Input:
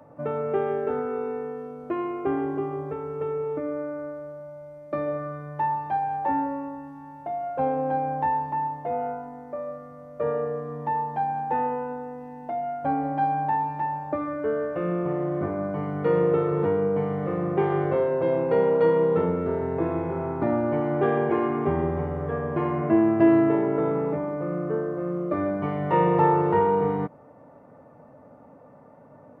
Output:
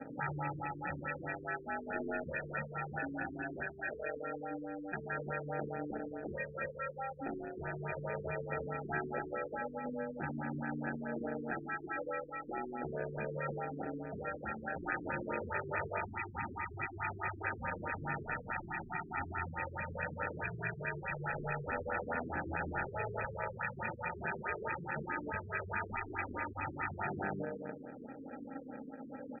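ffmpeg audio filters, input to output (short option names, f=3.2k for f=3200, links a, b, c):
-filter_complex "[0:a]equalizer=f=100:t=o:w=0.67:g=-5,equalizer=f=250:t=o:w=0.67:g=8,equalizer=f=1.6k:t=o:w=0.67:g=-7,aphaser=in_gain=1:out_gain=1:delay=3.5:decay=0.35:speed=0.12:type=sinusoidal,asuperstop=centerf=1100:order=8:qfactor=0.72,aecho=1:1:328|656|984:0.562|0.118|0.0248,acrusher=samples=41:mix=1:aa=0.000001,bass=f=250:g=-4,treble=f=4k:g=-6,bandreject=f=50:t=h:w=6,bandreject=f=100:t=h:w=6,bandreject=f=150:t=h:w=6,bandreject=f=200:t=h:w=6,bandreject=f=250:t=h:w=6,bandreject=f=300:t=h:w=6,bandreject=f=350:t=h:w=6,bandreject=f=400:t=h:w=6,asettb=1/sr,asplit=3[a][b][c];[a]atrim=end=21.114[d];[b]atrim=start=21.11:end=23.25,asetpts=PTS-STARTPTS,afade=t=in:d=0.004:c=qsin,afade=t=out:st=2.136:d=0.004:c=qsin,acrossover=split=220[e][f];[f]acompressor=threshold=-24dB:ratio=5[g];[e][g]amix=inputs=2:normalize=0[h];[c]atrim=start=23.246[i];[d][h]acrossfade=d=0.004:c1=hsin:c2=qsin[j];[j][i]acrossfade=d=0.004:c1=qsin:c2=hsin,afftfilt=real='re*lt(hypot(re,im),0.0891)':imag='im*lt(hypot(re,im),0.0891)':win_size=1024:overlap=0.75,afftfilt=real='re*lt(b*sr/1024,440*pow(2600/440,0.5+0.5*sin(2*PI*4.7*pts/sr)))':imag='im*lt(b*sr/1024,440*pow(2600/440,0.5+0.5*sin(2*PI*4.7*pts/sr)))':win_size=1024:overlap=0.75,volume=2.5dB"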